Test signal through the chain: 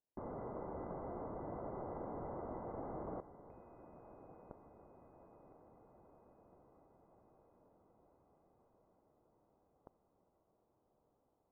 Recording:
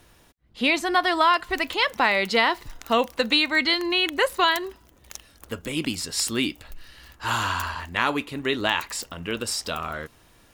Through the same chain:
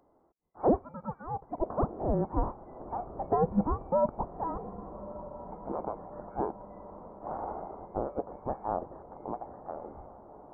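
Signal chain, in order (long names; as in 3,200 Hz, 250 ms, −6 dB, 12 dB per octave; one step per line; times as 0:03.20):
neighbouring bands swapped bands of 2,000 Hz
in parallel at −5.5 dB: hard clipping −22.5 dBFS
on the sum: Gaussian smoothing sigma 12 samples
low-shelf EQ 350 Hz −11.5 dB
feedback delay with all-pass diffusion 1,239 ms, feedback 63%, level −14.5 dB
level +6 dB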